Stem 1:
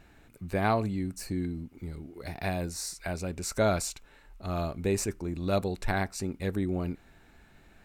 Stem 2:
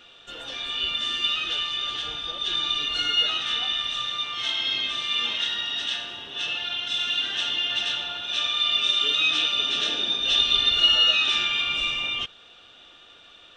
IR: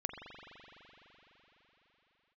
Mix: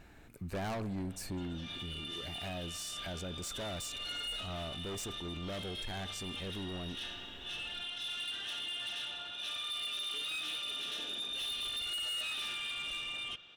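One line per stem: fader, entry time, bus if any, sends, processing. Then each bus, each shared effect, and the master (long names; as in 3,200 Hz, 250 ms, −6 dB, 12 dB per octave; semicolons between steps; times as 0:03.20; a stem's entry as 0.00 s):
−1.0 dB, 0.00 s, send −15.5 dB, hard clipping −31.5 dBFS, distortion −6 dB
−12.0 dB, 1.10 s, send −12.5 dB, soft clipping −23.5 dBFS, distortion −10 dB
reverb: on, RT60 4.5 s, pre-delay 42 ms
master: brickwall limiter −34 dBFS, peak gain reduction 8 dB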